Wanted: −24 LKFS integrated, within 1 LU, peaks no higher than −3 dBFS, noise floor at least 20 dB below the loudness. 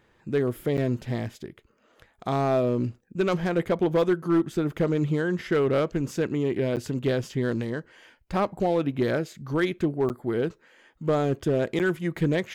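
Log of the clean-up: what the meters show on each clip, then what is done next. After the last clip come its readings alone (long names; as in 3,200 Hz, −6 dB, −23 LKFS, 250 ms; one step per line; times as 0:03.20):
share of clipped samples 0.8%; peaks flattened at −16.0 dBFS; number of dropouts 4; longest dropout 8.6 ms; integrated loudness −26.5 LKFS; sample peak −16.0 dBFS; target loudness −24.0 LKFS
→ clipped peaks rebuilt −16 dBFS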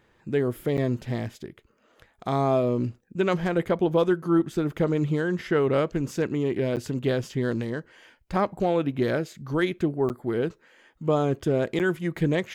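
share of clipped samples 0.0%; number of dropouts 4; longest dropout 8.6 ms
→ repair the gap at 0:00.77/0:06.76/0:10.09/0:11.79, 8.6 ms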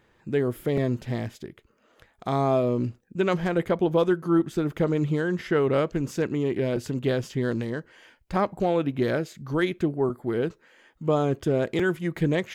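number of dropouts 0; integrated loudness −26.0 LKFS; sample peak −11.0 dBFS; target loudness −24.0 LKFS
→ level +2 dB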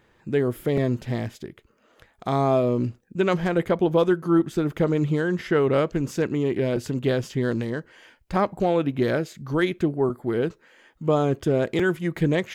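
integrated loudness −24.0 LKFS; sample peak −9.0 dBFS; background noise floor −62 dBFS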